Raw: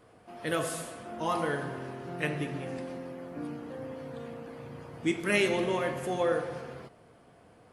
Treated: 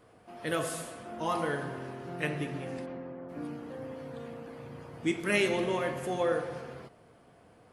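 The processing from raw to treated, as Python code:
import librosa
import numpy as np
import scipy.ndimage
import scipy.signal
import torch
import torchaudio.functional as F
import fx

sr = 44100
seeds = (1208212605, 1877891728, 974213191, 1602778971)

y = fx.lowpass(x, sr, hz=fx.line((2.85, 2800.0), (3.28, 1300.0)), slope=12, at=(2.85, 3.28), fade=0.02)
y = F.gain(torch.from_numpy(y), -1.0).numpy()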